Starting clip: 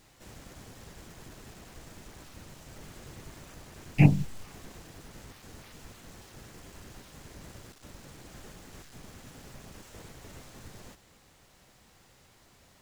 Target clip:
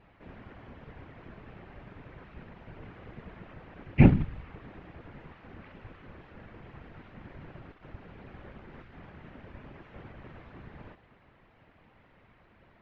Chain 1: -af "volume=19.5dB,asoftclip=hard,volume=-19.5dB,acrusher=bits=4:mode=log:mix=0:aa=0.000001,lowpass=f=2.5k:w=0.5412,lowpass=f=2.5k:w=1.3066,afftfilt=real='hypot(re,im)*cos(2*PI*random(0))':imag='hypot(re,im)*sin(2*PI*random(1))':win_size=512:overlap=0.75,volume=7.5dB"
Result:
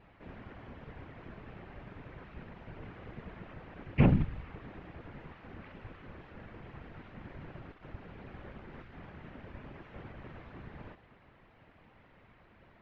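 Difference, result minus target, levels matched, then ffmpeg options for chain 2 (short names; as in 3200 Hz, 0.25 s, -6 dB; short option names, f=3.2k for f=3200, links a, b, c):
overloaded stage: distortion +9 dB
-af "volume=12dB,asoftclip=hard,volume=-12dB,acrusher=bits=4:mode=log:mix=0:aa=0.000001,lowpass=f=2.5k:w=0.5412,lowpass=f=2.5k:w=1.3066,afftfilt=real='hypot(re,im)*cos(2*PI*random(0))':imag='hypot(re,im)*sin(2*PI*random(1))':win_size=512:overlap=0.75,volume=7.5dB"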